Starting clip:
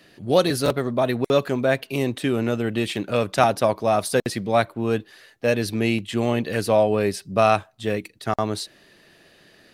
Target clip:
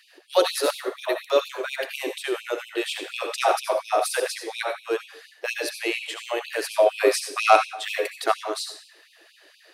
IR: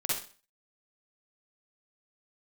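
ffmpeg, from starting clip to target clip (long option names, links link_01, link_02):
-filter_complex "[0:a]asettb=1/sr,asplit=3[link_01][link_02][link_03];[link_01]atrim=end=6.864[link_04];[link_02]atrim=start=6.86:end=8.32,asetpts=PTS-STARTPTS,afade=type=in:duration=0.004:curve=qsin,afade=type=out:start_time=1.456:duration=0.004:curve=qsin,acontrast=61[link_05];[link_03]atrim=start=8.316[link_06];[link_04][link_05]acrossfade=duration=0.004:curve1=hsin:curve2=qsin[link_07];[link_07][link_06]acrossfade=duration=0.004:curve1=qsin:curve2=hsin,asplit=2[link_08][link_09];[1:a]atrim=start_sample=2205,asetrate=31311,aresample=44100[link_10];[link_09][link_10]afir=irnorm=-1:irlink=0,volume=-12dB[link_11];[link_08][link_11]amix=inputs=2:normalize=0,afftfilt=real='re*gte(b*sr/1024,290*pow(2400/290,0.5+0.5*sin(2*PI*4.2*pts/sr)))':imag='im*gte(b*sr/1024,290*pow(2400/290,0.5+0.5*sin(2*PI*4.2*pts/sr)))':win_size=1024:overlap=0.75,volume=-2dB"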